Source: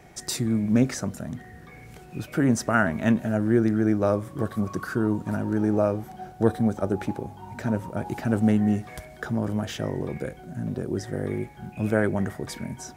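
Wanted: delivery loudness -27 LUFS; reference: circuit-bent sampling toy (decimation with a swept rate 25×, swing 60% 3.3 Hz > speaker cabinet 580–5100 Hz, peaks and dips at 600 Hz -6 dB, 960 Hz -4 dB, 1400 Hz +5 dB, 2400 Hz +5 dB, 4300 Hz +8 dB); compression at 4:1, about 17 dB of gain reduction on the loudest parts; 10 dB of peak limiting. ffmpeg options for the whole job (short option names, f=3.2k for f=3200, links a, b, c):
-af "acompressor=threshold=-37dB:ratio=4,alimiter=level_in=7.5dB:limit=-24dB:level=0:latency=1,volume=-7.5dB,acrusher=samples=25:mix=1:aa=0.000001:lfo=1:lforange=15:lforate=3.3,highpass=580,equalizer=f=600:t=q:w=4:g=-6,equalizer=f=960:t=q:w=4:g=-4,equalizer=f=1.4k:t=q:w=4:g=5,equalizer=f=2.4k:t=q:w=4:g=5,equalizer=f=4.3k:t=q:w=4:g=8,lowpass=f=5.1k:w=0.5412,lowpass=f=5.1k:w=1.3066,volume=20.5dB"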